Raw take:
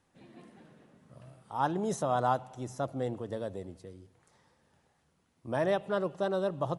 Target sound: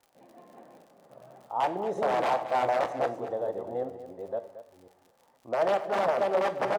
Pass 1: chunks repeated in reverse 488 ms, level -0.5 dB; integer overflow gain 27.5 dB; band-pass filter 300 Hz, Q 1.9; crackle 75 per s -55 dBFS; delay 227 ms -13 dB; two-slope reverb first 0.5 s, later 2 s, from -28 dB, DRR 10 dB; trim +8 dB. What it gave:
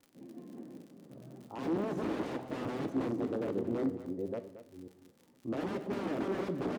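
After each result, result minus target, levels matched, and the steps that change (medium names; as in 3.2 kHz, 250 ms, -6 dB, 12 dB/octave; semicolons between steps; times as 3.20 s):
250 Hz band +14.0 dB; integer overflow: distortion +12 dB
change: band-pass filter 690 Hz, Q 1.9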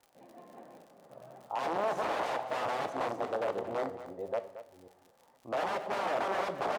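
integer overflow: distortion +12 dB
change: integer overflow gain 21.5 dB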